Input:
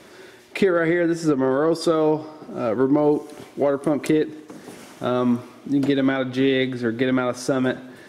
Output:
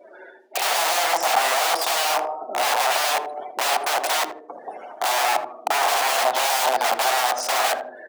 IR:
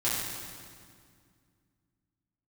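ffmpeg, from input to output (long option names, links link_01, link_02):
-filter_complex "[0:a]afftdn=noise_reduction=32:noise_floor=-42,acontrast=26,aeval=exprs='(mod(8.91*val(0)+1,2)-1)/8.91':channel_layout=same,highpass=frequency=720:width_type=q:width=4,asplit=2[link_01][link_02];[link_02]adelay=79,lowpass=frequency=920:poles=1,volume=-7dB,asplit=2[link_03][link_04];[link_04]adelay=79,lowpass=frequency=920:poles=1,volume=0.33,asplit=2[link_05][link_06];[link_06]adelay=79,lowpass=frequency=920:poles=1,volume=0.33,asplit=2[link_07][link_08];[link_08]adelay=79,lowpass=frequency=920:poles=1,volume=0.33[link_09];[link_03][link_05][link_07][link_09]amix=inputs=4:normalize=0[link_10];[link_01][link_10]amix=inputs=2:normalize=0"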